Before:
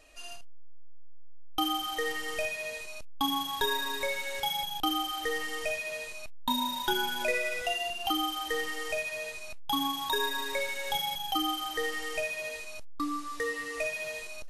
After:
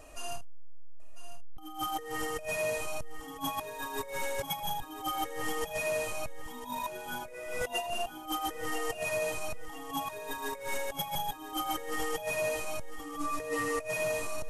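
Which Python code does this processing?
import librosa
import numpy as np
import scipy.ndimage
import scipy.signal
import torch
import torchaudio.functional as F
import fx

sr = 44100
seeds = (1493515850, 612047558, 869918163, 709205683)

y = fx.graphic_eq_10(x, sr, hz=(125, 1000, 2000, 4000), db=(9, 4, -6, -10))
y = fx.over_compress(y, sr, threshold_db=-38.0, ratio=-0.5)
y = fx.echo_feedback(y, sr, ms=999, feedback_pct=40, wet_db=-12.0)
y = y * 10.0 ** (3.5 / 20.0)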